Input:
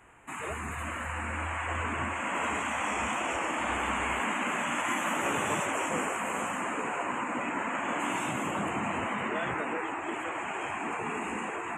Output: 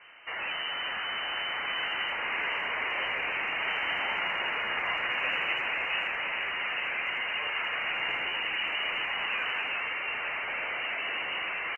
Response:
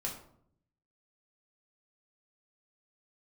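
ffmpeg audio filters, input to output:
-filter_complex "[0:a]asetrate=45392,aresample=44100,atempo=0.971532,asplit=2[s0][s1];[s1]aeval=exprs='(mod(37.6*val(0)+1,2)-1)/37.6':c=same,volume=0.668[s2];[s0][s2]amix=inputs=2:normalize=0,lowpass=f=2600:t=q:w=0.5098,lowpass=f=2600:t=q:w=0.6013,lowpass=f=2600:t=q:w=0.9,lowpass=f=2600:t=q:w=2.563,afreqshift=-3100,asplit=2[s3][s4];[s4]adelay=80,highpass=300,lowpass=3400,asoftclip=type=hard:threshold=0.0447,volume=0.0891[s5];[s3][s5]amix=inputs=2:normalize=0"

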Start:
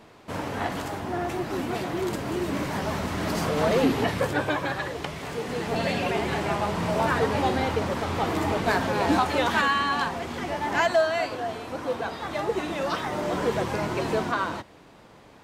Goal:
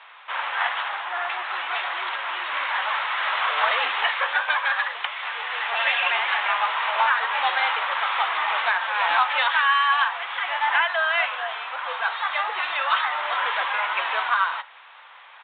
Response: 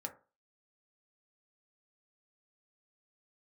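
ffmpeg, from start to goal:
-filter_complex "[0:a]highpass=f=1000:w=0.5412,highpass=f=1000:w=1.3066,alimiter=limit=0.0891:level=0:latency=1:release=433,asplit=2[s0][s1];[1:a]atrim=start_sample=2205[s2];[s1][s2]afir=irnorm=-1:irlink=0,volume=0.531[s3];[s0][s3]amix=inputs=2:normalize=0,aresample=8000,aresample=44100,volume=2.66"

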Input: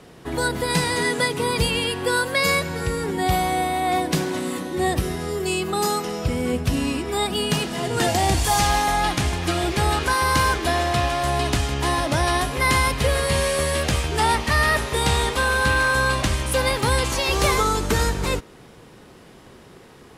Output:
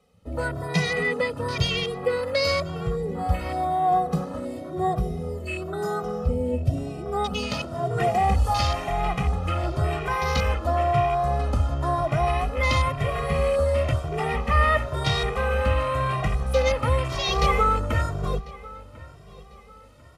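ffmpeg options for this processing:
-filter_complex "[0:a]bandreject=f=1700:w=6.9,afwtdn=0.0398,aecho=1:1:1.6:0.55,areverse,acompressor=mode=upward:threshold=0.00794:ratio=2.5,areverse,aresample=32000,aresample=44100,asplit=2[s0][s1];[s1]adelay=1046,lowpass=f=4300:p=1,volume=0.1,asplit=2[s2][s3];[s3]adelay=1046,lowpass=f=4300:p=1,volume=0.37,asplit=2[s4][s5];[s5]adelay=1046,lowpass=f=4300:p=1,volume=0.37[s6];[s2][s4][s6]amix=inputs=3:normalize=0[s7];[s0][s7]amix=inputs=2:normalize=0,asplit=2[s8][s9];[s9]adelay=2,afreqshift=0.97[s10];[s8][s10]amix=inputs=2:normalize=1"

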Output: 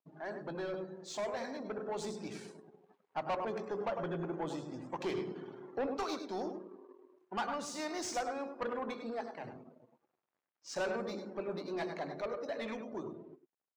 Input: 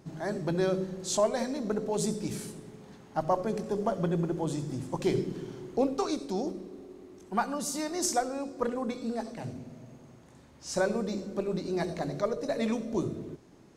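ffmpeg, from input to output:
-af "aeval=exprs='sgn(val(0))*max(abs(val(0))-0.00282,0)':c=same,highpass=f=1000:p=1,aecho=1:1:101:0.335,asoftclip=type=tanh:threshold=0.0188,dynaudnorm=f=350:g=11:m=1.5,afftdn=nr=19:nf=-53,adynamicsmooth=sensitivity=5.5:basefreq=3000,volume=1.12"

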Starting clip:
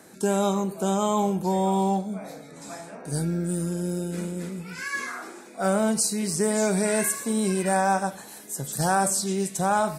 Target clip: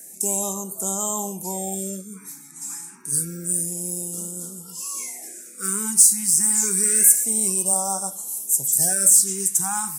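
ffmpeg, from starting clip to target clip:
-filter_complex "[0:a]highpass=76,equalizer=f=2200:t=o:w=2.1:g=3.5,acrossover=split=750|1400[s0][s1][s2];[s2]aexciter=amount=6.9:drive=9.1:freq=5900[s3];[s0][s1][s3]amix=inputs=3:normalize=0,afftfilt=real='re*(1-between(b*sr/1024,520*pow(2100/520,0.5+0.5*sin(2*PI*0.28*pts/sr))/1.41,520*pow(2100/520,0.5+0.5*sin(2*PI*0.28*pts/sr))*1.41))':imag='im*(1-between(b*sr/1024,520*pow(2100/520,0.5+0.5*sin(2*PI*0.28*pts/sr))/1.41,520*pow(2100/520,0.5+0.5*sin(2*PI*0.28*pts/sr))*1.41))':win_size=1024:overlap=0.75,volume=0.422"

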